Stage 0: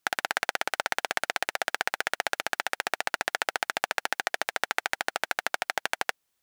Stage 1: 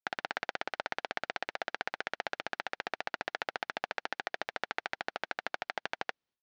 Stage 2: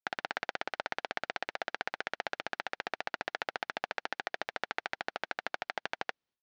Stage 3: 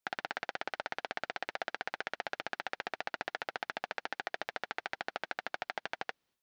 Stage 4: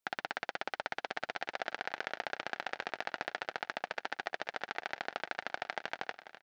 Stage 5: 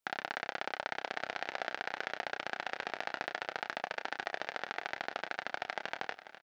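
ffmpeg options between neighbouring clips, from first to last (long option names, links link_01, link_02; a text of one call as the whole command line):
ffmpeg -i in.wav -af "agate=range=-33dB:threshold=-57dB:ratio=3:detection=peak,lowpass=frequency=5100:width=0.5412,lowpass=frequency=5100:width=1.3066,equalizer=frequency=200:width=0.36:gain=6,volume=-9dB" out.wav
ffmpeg -i in.wav -af anull out.wav
ffmpeg -i in.wav -af "alimiter=level_in=0.5dB:limit=-24dB:level=0:latency=1:release=17,volume=-0.5dB,volume=7.5dB" out.wav
ffmpeg -i in.wav -af "aecho=1:1:491|982|1473|1964|2455:0.211|0.104|0.0507|0.0249|0.0122" out.wav
ffmpeg -i in.wav -filter_complex "[0:a]asplit=2[link_01][link_02];[link_02]adelay=30,volume=-8.5dB[link_03];[link_01][link_03]amix=inputs=2:normalize=0" out.wav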